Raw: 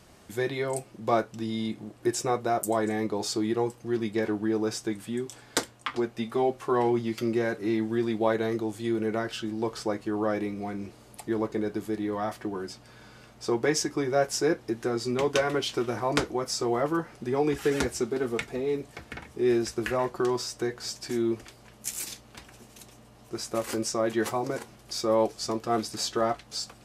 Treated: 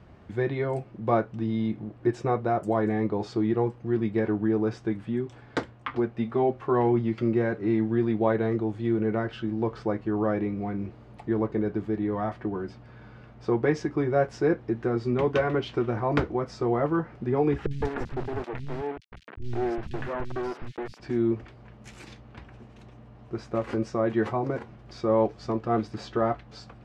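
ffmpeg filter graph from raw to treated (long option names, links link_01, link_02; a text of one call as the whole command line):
ffmpeg -i in.wav -filter_complex "[0:a]asettb=1/sr,asplit=3[link_01][link_02][link_03];[link_01]atrim=end=17.664[link_04];[link_02]atrim=start=17.66:end=21,asetpts=PTS-STARTPTS,afade=type=in:duration=0.004:curve=qsin,afade=type=out:start_time=3.336:duration=0.004:curve=qsin,bandreject=frequency=2200:width=15,acrusher=bits=3:dc=4:mix=0:aa=0.000001,acrossover=split=220|3100[link_05][link_06][link_07];[link_07]adelay=50[link_08];[link_06]adelay=160[link_09];[link_05][link_09][link_08]amix=inputs=3:normalize=0,atrim=end_sample=147294[link_10];[link_03]atrim=start=20.996[link_11];[link_04][link_10]acrossfade=duration=0.004:curve1=hsin:curve2=qsin[link_12];[link_12][link_11]acrossfade=duration=0.004:curve1=qsin:curve2=hsin,lowpass=2200,equalizer=frequency=82:width_type=o:width=2.6:gain=8.5" out.wav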